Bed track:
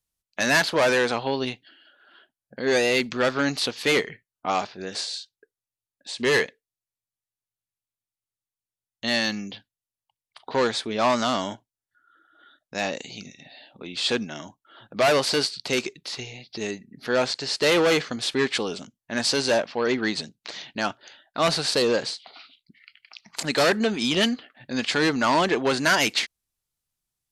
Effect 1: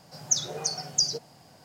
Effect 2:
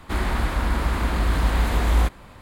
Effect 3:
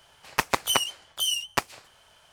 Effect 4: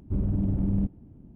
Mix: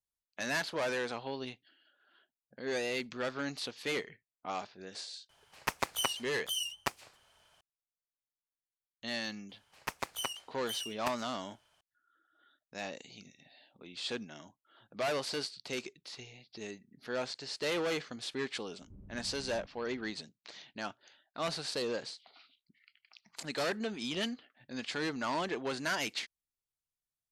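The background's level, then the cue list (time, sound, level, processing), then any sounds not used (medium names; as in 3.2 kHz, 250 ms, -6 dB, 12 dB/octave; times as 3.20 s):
bed track -13.5 dB
5.29 s: add 3 -9 dB
9.49 s: add 3 -13.5 dB
18.80 s: add 4 -12.5 dB + compression 2.5:1, threshold -44 dBFS
not used: 1, 2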